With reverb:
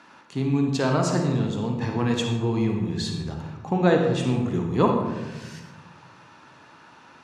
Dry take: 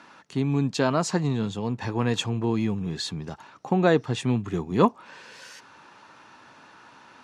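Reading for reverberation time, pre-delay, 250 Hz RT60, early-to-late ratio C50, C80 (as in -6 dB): 1.2 s, 16 ms, 2.0 s, 3.0 dB, 5.5 dB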